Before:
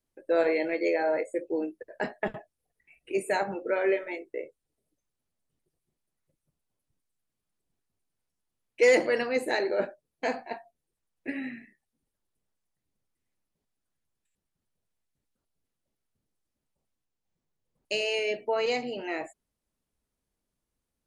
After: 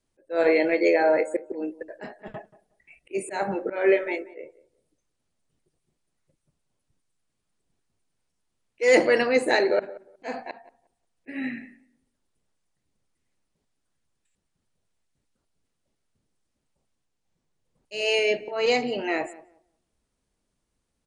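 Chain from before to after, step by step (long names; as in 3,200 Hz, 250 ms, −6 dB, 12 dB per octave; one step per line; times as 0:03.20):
volume swells 193 ms
tape delay 181 ms, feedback 22%, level −17 dB, low-pass 1,200 Hz
downsampling to 22,050 Hz
level +6.5 dB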